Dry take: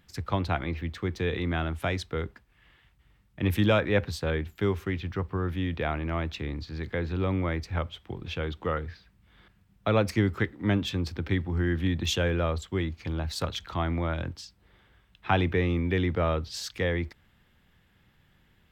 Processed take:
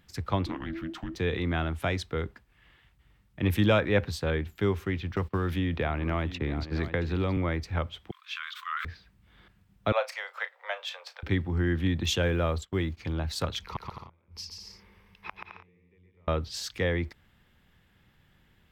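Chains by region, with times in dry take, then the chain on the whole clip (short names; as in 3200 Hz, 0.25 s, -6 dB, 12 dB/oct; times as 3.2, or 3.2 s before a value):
0.46–1.15 compressor 5:1, threshold -31 dBFS + frequency shift -410 Hz + Doppler distortion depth 0.16 ms
5.16–7.37 gate -40 dBFS, range -23 dB + echo 0.672 s -16 dB + three-band squash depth 100%
8.11–8.85 brick-wall FIR high-pass 1000 Hz + sustainer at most 37 dB/s
9.92–11.23 steep high-pass 530 Hz 72 dB/oct + bell 12000 Hz -7.5 dB 2 oct + doubler 34 ms -12.5 dB
12.23–12.97 gate -41 dBFS, range -16 dB + short-mantissa float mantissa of 6-bit
13.62–16.28 ripple EQ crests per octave 0.84, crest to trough 10 dB + flipped gate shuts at -22 dBFS, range -41 dB + bouncing-ball echo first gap 0.13 s, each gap 0.65×, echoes 5
whole clip: dry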